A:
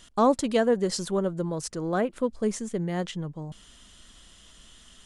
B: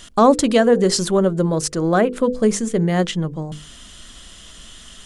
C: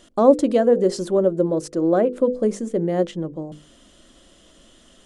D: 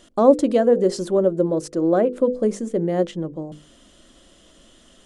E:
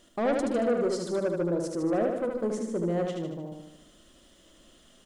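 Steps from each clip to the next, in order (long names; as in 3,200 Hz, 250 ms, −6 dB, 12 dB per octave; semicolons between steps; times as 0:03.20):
mains-hum notches 50/100/150/200/250/300/350/400/450/500 Hz; in parallel at 0 dB: brickwall limiter −19.5 dBFS, peak gain reduction 8.5 dB; on the sum: parametric band 910 Hz −3.5 dB 0.22 octaves; level +5.5 dB
hollow resonant body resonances 330/530 Hz, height 15 dB, ringing for 20 ms; level −13.5 dB
no processing that can be heard
bit-depth reduction 12 bits, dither triangular; soft clipping −15 dBFS, distortion −10 dB; on a send: repeating echo 76 ms, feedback 56%, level −4 dB; on the sum: level −7.5 dB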